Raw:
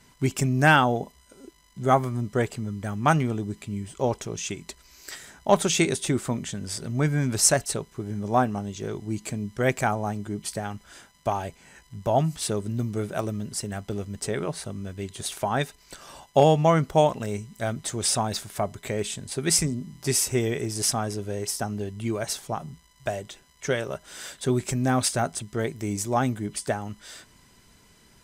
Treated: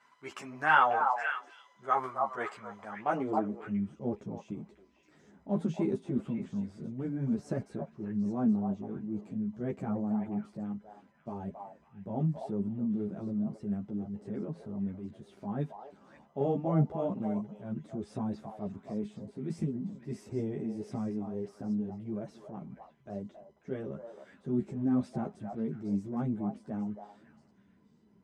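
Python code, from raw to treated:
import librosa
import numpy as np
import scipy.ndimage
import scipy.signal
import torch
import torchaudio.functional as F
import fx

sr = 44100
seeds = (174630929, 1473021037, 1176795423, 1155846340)

p1 = fx.low_shelf(x, sr, hz=74.0, db=-7.5)
p2 = fx.level_steps(p1, sr, step_db=12)
p3 = p1 + F.gain(torch.from_numpy(p2), -3.0).numpy()
p4 = fx.transient(p3, sr, attack_db=-7, sustain_db=4)
p5 = fx.filter_sweep_bandpass(p4, sr, from_hz=1200.0, to_hz=210.0, start_s=2.74, end_s=3.7, q=1.6)
p6 = p5 + fx.echo_stepped(p5, sr, ms=272, hz=810.0, octaves=1.4, feedback_pct=70, wet_db=-2.0, dry=0)
y = fx.ensemble(p6, sr)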